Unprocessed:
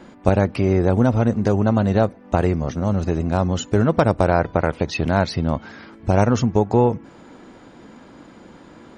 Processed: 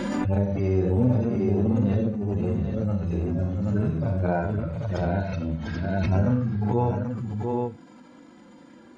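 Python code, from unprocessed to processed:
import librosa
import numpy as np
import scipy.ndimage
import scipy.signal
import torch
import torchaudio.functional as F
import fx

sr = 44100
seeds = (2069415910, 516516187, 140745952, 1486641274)

p1 = fx.hpss_only(x, sr, part='harmonic')
p2 = p1 + fx.echo_multitap(p1, sr, ms=(40, 64, 96, 698, 785), db=(-5.0, -7.0, -11.5, -8.0, -4.0), dry=0)
p3 = fx.pre_swell(p2, sr, db_per_s=22.0)
y = F.gain(torch.from_numpy(p3), -8.0).numpy()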